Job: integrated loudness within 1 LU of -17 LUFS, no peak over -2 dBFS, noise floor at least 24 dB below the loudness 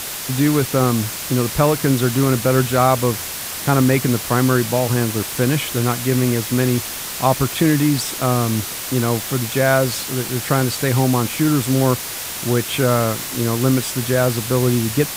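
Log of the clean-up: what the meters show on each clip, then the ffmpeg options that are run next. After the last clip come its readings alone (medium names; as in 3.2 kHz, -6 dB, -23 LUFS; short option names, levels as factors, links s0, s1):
noise floor -28 dBFS; noise floor target -43 dBFS; loudness -18.5 LUFS; peak level -2.5 dBFS; loudness target -17.0 LUFS
-> -af "afftdn=nr=15:nf=-28"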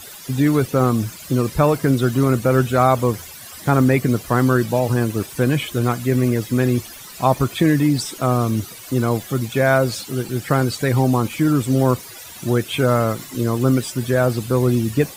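noise floor -38 dBFS; noise floor target -43 dBFS
-> -af "afftdn=nr=6:nf=-38"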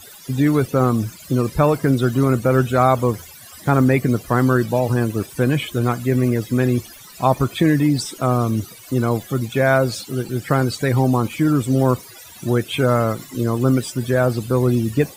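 noise floor -41 dBFS; noise floor target -43 dBFS
-> -af "afftdn=nr=6:nf=-41"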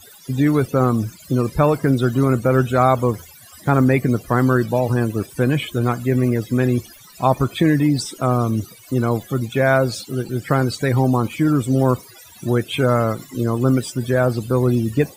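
noise floor -45 dBFS; loudness -19.0 LUFS; peak level -3.0 dBFS; loudness target -17.0 LUFS
-> -af "volume=1.26,alimiter=limit=0.794:level=0:latency=1"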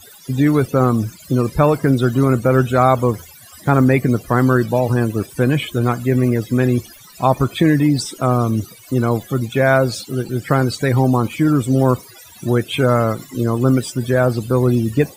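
loudness -17.0 LUFS; peak level -2.0 dBFS; noise floor -43 dBFS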